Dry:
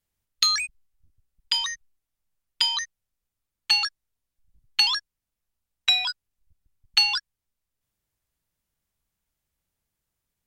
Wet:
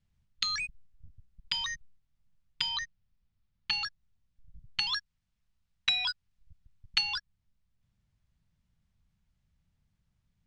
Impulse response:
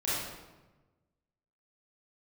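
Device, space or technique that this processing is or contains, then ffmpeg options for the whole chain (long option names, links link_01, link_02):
jukebox: -filter_complex "[0:a]asettb=1/sr,asplit=3[link_01][link_02][link_03];[link_01]atrim=end=2.694[link_04];[link_02]atrim=start=2.69:end=3.73,asetpts=PTS-STARTPTS,afade=type=in:duration=0.004:curve=qsin,afade=type=out:start_time=1.036:duration=0.004:curve=qsin,lowpass=frequency=5900:width=0.5412,lowpass=frequency=5900:width=1.3066[link_05];[link_03]atrim=start=3.726[link_06];[link_04][link_05]acrossfade=duration=0.004:curve1=hsin:curve2=qsin[link_07];[link_07][link_06]acrossfade=duration=0.004:curve1=qsin:curve2=hsin,lowpass=5100,lowshelf=frequency=250:width_type=q:width=1.5:gain=11,acompressor=threshold=-30dB:ratio=4,asettb=1/sr,asplit=3[link_08][link_09][link_10];[link_08]atrim=end=4.924[link_11];[link_09]atrim=start=4.92:end=7.01,asetpts=PTS-STARTPTS,afade=type=in:duration=0.004:curve=qsin,afade=type=out:start_time=2.086:duration=0.004:curve=qsin,tiltshelf=frequency=680:gain=-3.5[link_12];[link_10]atrim=start=7.006[link_13];[link_11][link_12]acrossfade=duration=0.004:curve1=hsin:curve2=qsin[link_14];[link_14][link_13]acrossfade=duration=0.004:curve1=qsin:curve2=hsin"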